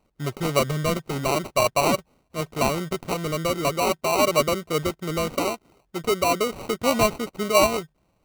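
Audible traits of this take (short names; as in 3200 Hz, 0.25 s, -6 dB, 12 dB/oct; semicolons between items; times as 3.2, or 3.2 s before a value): aliases and images of a low sample rate 1700 Hz, jitter 0%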